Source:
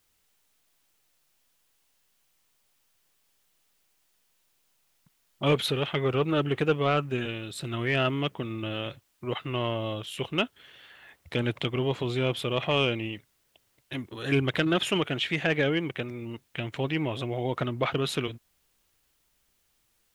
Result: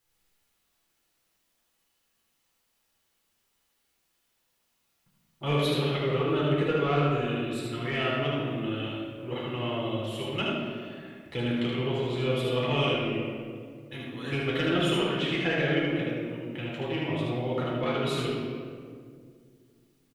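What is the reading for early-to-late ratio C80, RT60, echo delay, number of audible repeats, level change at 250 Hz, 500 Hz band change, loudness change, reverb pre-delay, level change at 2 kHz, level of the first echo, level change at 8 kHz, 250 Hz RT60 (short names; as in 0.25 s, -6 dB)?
0.5 dB, 2.1 s, 76 ms, 1, +1.0 dB, 0.0 dB, 0.0 dB, 6 ms, -1.0 dB, -3.5 dB, -3.5 dB, 3.0 s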